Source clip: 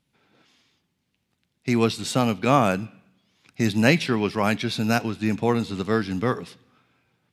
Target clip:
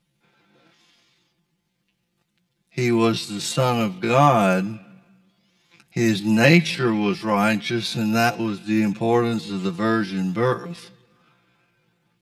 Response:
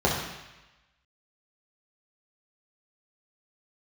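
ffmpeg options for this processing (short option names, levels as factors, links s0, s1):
-af "atempo=0.6,aecho=1:1:5.8:0.94"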